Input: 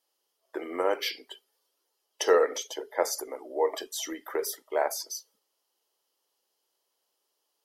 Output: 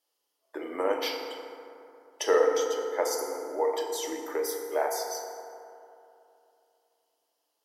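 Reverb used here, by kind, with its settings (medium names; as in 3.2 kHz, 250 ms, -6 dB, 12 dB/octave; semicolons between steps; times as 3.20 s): FDN reverb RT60 2.8 s, high-frequency decay 0.4×, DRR 1.5 dB; trim -2.5 dB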